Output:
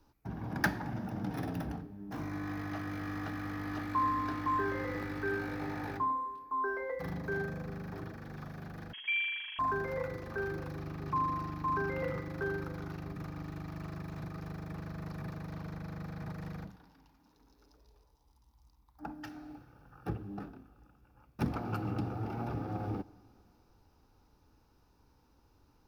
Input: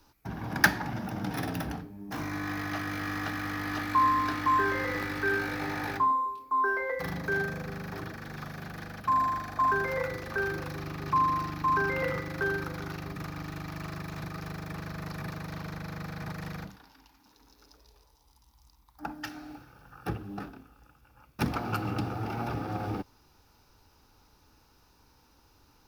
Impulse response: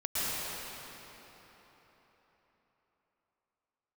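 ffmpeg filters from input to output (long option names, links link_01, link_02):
-filter_complex "[0:a]tiltshelf=frequency=1100:gain=5,asplit=2[link_01][link_02];[1:a]atrim=start_sample=2205,asetrate=66150,aresample=44100[link_03];[link_02][link_03]afir=irnorm=-1:irlink=0,volume=-27.5dB[link_04];[link_01][link_04]amix=inputs=2:normalize=0,asettb=1/sr,asplit=3[link_05][link_06][link_07];[link_05]atrim=end=8.934[link_08];[link_06]atrim=start=8.93:end=9.59,asetpts=PTS-STARTPTS,afade=type=in:duration=0.004:curve=qsin,afade=type=out:start_time=0.656:duration=0.004:curve=qsin,lowpass=frequency=2900:width_type=q:width=0.5098,lowpass=frequency=2900:width_type=q:width=0.6013,lowpass=frequency=2900:width_type=q:width=0.9,lowpass=frequency=2900:width_type=q:width=2.563,afreqshift=-3400[link_09];[link_07]atrim=start=9.586[link_10];[link_08][link_09]acrossfade=duration=0.004:curve1=hsin:curve2=qsin[link_11];[link_11][link_10]acrossfade=duration=0.004:curve1=qsin:curve2=hsin,volume=-7.5dB"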